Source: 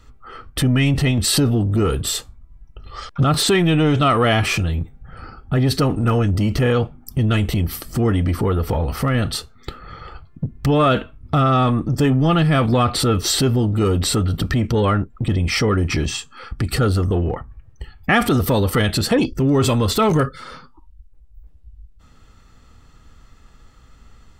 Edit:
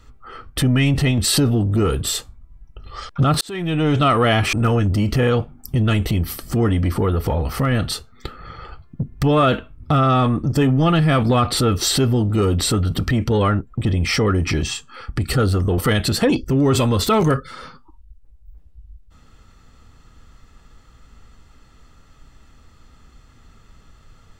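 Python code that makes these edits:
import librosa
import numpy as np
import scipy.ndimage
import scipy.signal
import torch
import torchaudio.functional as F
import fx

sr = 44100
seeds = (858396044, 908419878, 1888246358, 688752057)

y = fx.edit(x, sr, fx.fade_in_span(start_s=3.41, length_s=0.55),
    fx.cut(start_s=4.53, length_s=1.43),
    fx.cut(start_s=17.21, length_s=1.46), tone=tone)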